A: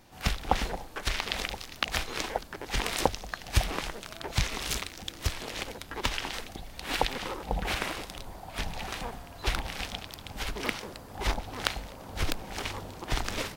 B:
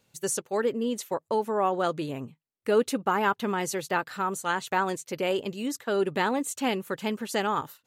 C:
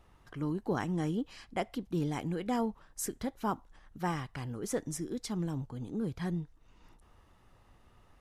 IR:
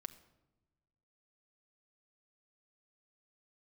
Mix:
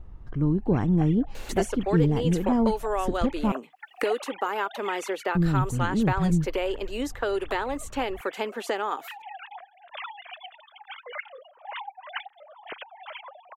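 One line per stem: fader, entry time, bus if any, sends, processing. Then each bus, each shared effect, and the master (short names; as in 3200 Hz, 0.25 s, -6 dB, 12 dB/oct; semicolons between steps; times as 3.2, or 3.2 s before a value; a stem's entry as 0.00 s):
-5.5 dB, 0.50 s, no send, sine-wave speech; reverb removal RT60 0.74 s; auto duck -12 dB, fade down 0.25 s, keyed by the third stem
-1.5 dB, 1.35 s, no send, HPF 310 Hz 24 dB/oct; high shelf 4500 Hz -6 dB; three-band squash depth 100%
+2.0 dB, 0.00 s, muted 3.52–5.35, no send, tilt -4 dB/oct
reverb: off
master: dry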